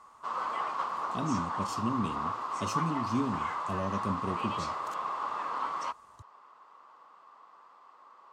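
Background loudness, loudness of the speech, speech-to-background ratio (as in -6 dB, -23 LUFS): -34.5 LUFS, -36.0 LUFS, -1.5 dB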